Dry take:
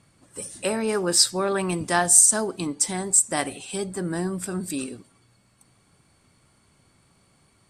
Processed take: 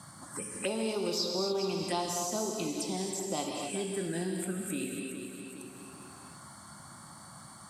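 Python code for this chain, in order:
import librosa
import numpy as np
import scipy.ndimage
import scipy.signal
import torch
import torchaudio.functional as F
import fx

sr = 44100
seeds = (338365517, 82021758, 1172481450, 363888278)

y = fx.highpass(x, sr, hz=210.0, slope=6)
y = fx.env_phaser(y, sr, low_hz=430.0, high_hz=1700.0, full_db=-23.0)
y = fx.echo_feedback(y, sr, ms=413, feedback_pct=28, wet_db=-13.5)
y = fx.rev_gated(y, sr, seeds[0], gate_ms=300, shape='flat', drr_db=1.5)
y = fx.band_squash(y, sr, depth_pct=70)
y = y * 10.0 ** (-6.0 / 20.0)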